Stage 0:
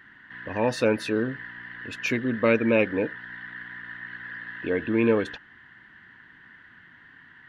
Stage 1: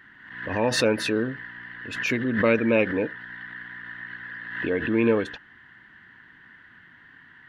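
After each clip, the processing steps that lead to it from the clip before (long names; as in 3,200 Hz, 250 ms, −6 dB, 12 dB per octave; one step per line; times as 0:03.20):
background raised ahead of every attack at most 65 dB per second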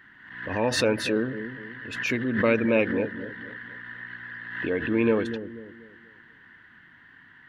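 delay with a low-pass on its return 243 ms, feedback 37%, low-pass 410 Hz, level −8.5 dB
level −1.5 dB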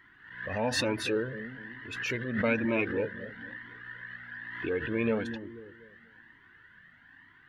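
flanger whose copies keep moving one way rising 1.1 Hz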